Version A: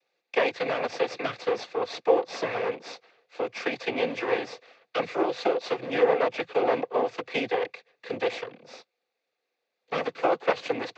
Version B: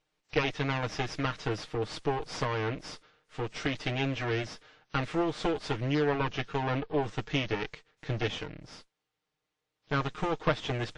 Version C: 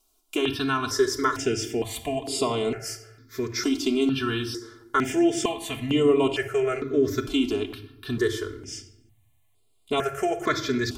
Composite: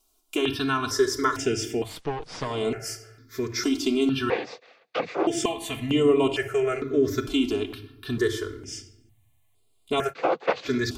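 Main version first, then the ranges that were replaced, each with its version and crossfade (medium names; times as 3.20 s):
C
1.90–2.52 s: from B, crossfade 0.24 s
4.30–5.27 s: from A
10.11–10.67 s: from A, crossfade 0.06 s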